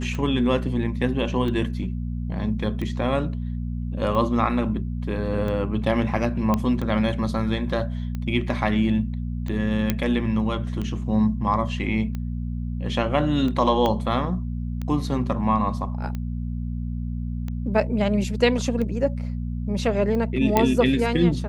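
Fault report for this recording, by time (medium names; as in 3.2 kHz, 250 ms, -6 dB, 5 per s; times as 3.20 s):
hum 60 Hz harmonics 4 -28 dBFS
tick 45 rpm -19 dBFS
6.54 s: pop -10 dBFS
9.90 s: pop -7 dBFS
13.86 s: pop -11 dBFS
20.57 s: pop -5 dBFS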